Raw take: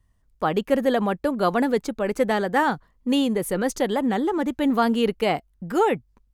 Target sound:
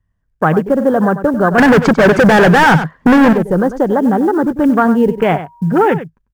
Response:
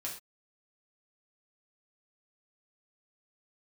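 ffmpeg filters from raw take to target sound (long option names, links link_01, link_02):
-filter_complex "[0:a]aemphasis=mode=reproduction:type=50fm,asettb=1/sr,asplit=3[link_01][link_02][link_03];[link_01]atrim=end=5.084[link_04];[link_02]atrim=start=5.08:end=5.87,asetpts=PTS-STARTPTS,afade=type=in:duration=0.004:curve=qsin,afade=type=out:start_time=0.786:duration=0.004:curve=qsin,aeval=exprs='val(0)+0.0112*sin(2*PI*950*n/s)':channel_layout=same[link_05];[link_03]atrim=start=5.866[link_06];[link_04][link_05]acrossfade=duration=0.004:curve1=hsin:curve2=qsin[link_07];[link_07][link_06]acrossfade=duration=0.004:curve1=qsin:curve2=hsin,afwtdn=0.0355,asettb=1/sr,asplit=3[link_08][link_09][link_10];[link_08]atrim=end=1.584[link_11];[link_09]atrim=start=1.58:end=3.33,asetpts=PTS-STARTPTS,afade=type=in:duration=0.004:curve=qsin,afade=type=out:start_time=1.746:duration=0.004:curve=qsin,asplit=2[link_12][link_13];[link_13]highpass=frequency=720:poles=1,volume=37dB,asoftclip=type=tanh:threshold=-7.5dB[link_14];[link_12][link_14]amix=inputs=2:normalize=0,lowpass=frequency=2700:poles=1,volume=-6dB[link_15];[link_10]atrim=start=3.326[link_16];[link_11][link_15]acrossfade=duration=0.004:curve1=hsin:curve2=qsin[link_17];[link_17][link_16]acrossfade=duration=0.004:curve1=qsin:curve2=hsin,asplit=2[link_18][link_19];[link_19]acompressor=threshold=-26dB:ratio=16,volume=3dB[link_20];[link_18][link_20]amix=inputs=2:normalize=0,acrusher=bits=9:mode=log:mix=0:aa=0.000001,equalizer=frequency=100:width_type=o:width=0.33:gain=5,equalizer=frequency=160:width_type=o:width=0.33:gain=9,equalizer=frequency=1600:width_type=o:width=0.33:gain=9,equalizer=frequency=4000:width_type=o:width=0.33:gain=-4,asplit=2[link_21][link_22];[link_22]aecho=0:1:96:0.224[link_23];[link_21][link_23]amix=inputs=2:normalize=0,alimiter=level_in=6dB:limit=-1dB:release=50:level=0:latency=1,volume=-1dB"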